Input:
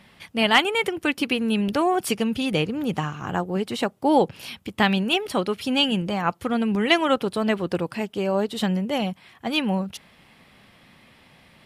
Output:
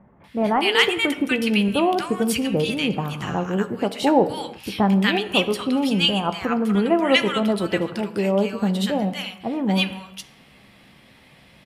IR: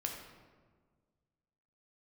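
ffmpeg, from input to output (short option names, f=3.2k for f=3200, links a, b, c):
-filter_complex "[0:a]asplit=2[a][b];[b]adelay=15,volume=-13dB[c];[a][c]amix=inputs=2:normalize=0,acrossover=split=1200[d][e];[e]adelay=240[f];[d][f]amix=inputs=2:normalize=0,asplit=2[g][h];[1:a]atrim=start_sample=2205,afade=t=out:st=0.4:d=0.01,atrim=end_sample=18081[i];[h][i]afir=irnorm=-1:irlink=0,volume=-6dB[j];[g][j]amix=inputs=2:normalize=0,volume=-1dB"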